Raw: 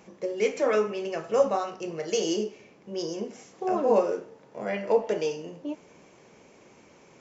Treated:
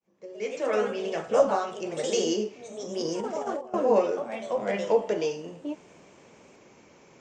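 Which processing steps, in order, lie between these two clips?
opening faded in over 1.05 s; echoes that change speed 0.14 s, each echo +2 st, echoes 2, each echo -6 dB; 3–3.74 negative-ratio compressor -31 dBFS, ratio -0.5

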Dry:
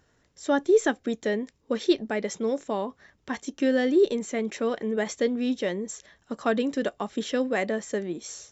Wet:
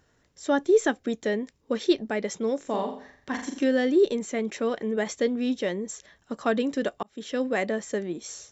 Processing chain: 2.6–3.64 flutter echo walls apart 7.3 m, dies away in 0.52 s; 7.03–7.46 fade in

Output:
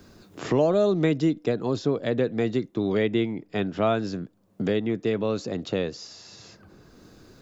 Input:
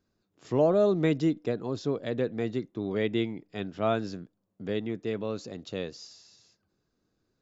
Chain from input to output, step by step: three-band squash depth 70%; gain +4.5 dB

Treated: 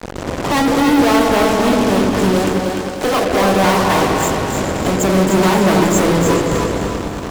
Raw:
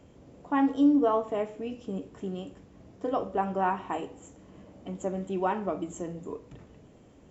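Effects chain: bin magnitudes rounded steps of 30 dB; 2.31–3.3 HPF 290 Hz -> 710 Hz 6 dB/oct; in parallel at +1 dB: compressor, threshold -41 dBFS, peak gain reduction 21 dB; on the sum: fuzz box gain 50 dB, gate -44 dBFS; on a send: repeats that get brighter 0.106 s, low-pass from 400 Hz, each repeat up 2 oct, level -3 dB; on the sum: lo-fi delay 0.298 s, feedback 35%, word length 7-bit, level -6 dB; gain -1 dB

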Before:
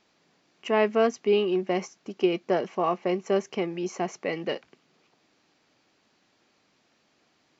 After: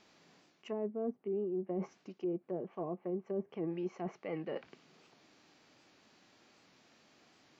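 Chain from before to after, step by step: treble ducked by the level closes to 460 Hz, closed at -21.5 dBFS; reverse; compressor 8:1, threshold -38 dBFS, peak gain reduction 19 dB; reverse; harmonic-percussive split percussive -5 dB; record warp 78 rpm, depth 100 cents; gain +4 dB

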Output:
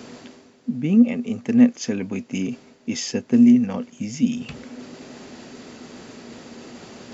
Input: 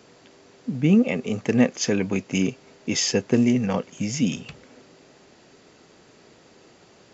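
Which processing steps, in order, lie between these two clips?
bell 240 Hz +13.5 dB 0.23 oct; reverse; upward compressor, threshold -20 dBFS; reverse; gain -5.5 dB

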